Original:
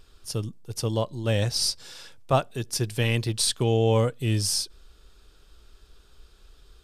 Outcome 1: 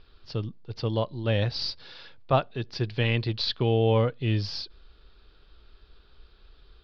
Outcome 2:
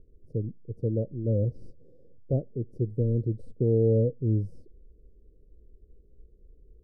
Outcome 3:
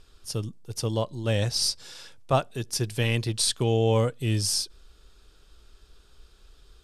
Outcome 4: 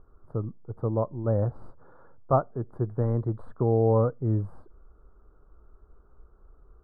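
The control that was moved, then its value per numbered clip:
elliptic low-pass, frequency: 4500, 510, 12000, 1300 Hz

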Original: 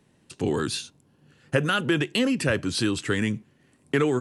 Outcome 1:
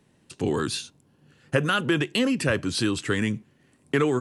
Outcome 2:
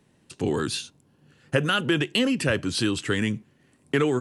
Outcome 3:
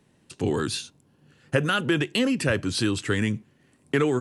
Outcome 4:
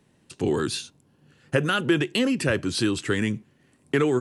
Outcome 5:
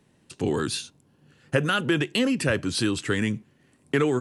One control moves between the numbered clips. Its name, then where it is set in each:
dynamic EQ, frequency: 1100, 3000, 100, 360, 9600 Hz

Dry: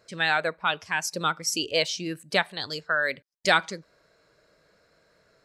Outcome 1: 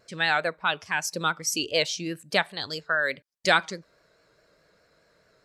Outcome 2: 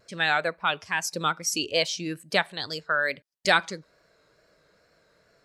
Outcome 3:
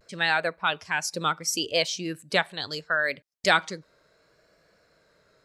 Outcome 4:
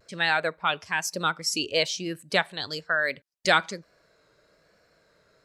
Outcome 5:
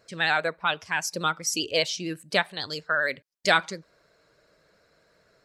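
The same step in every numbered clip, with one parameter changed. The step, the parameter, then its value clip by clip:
vibrato, rate: 4.8, 2.3, 0.71, 1.1, 15 Hz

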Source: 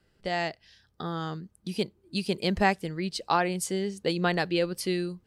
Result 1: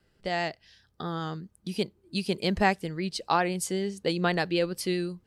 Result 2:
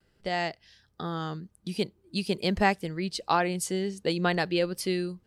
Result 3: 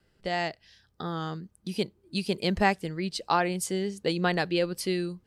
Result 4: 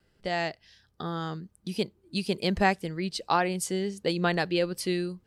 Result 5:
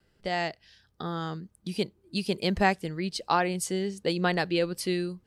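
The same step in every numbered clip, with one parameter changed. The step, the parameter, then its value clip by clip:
vibrato, rate: 7.7, 0.47, 3.1, 1.8, 1 Hz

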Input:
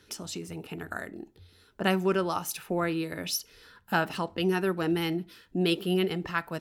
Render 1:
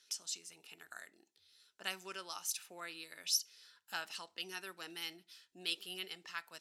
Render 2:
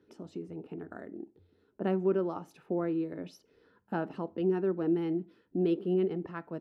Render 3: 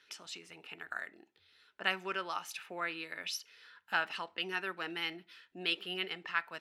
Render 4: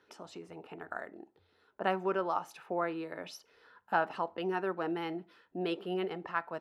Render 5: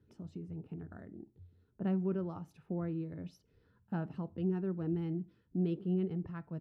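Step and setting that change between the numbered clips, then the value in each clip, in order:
band-pass, frequency: 6300, 320, 2300, 820, 120 Hz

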